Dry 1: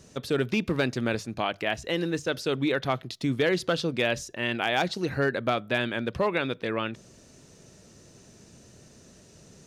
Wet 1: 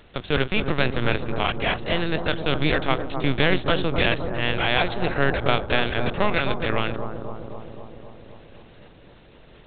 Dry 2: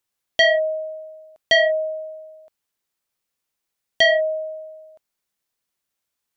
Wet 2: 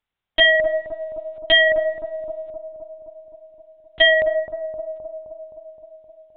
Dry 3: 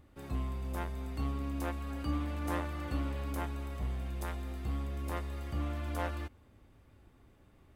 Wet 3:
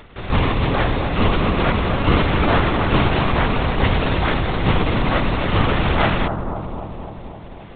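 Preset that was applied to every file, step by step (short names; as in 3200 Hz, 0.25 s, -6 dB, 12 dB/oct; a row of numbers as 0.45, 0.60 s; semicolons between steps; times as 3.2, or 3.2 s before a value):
spectral contrast lowered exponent 0.62; LPC vocoder at 8 kHz pitch kept; analogue delay 0.26 s, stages 2048, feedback 69%, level -7 dB; normalise peaks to -1.5 dBFS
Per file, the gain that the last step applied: +4.5, +2.0, +17.5 dB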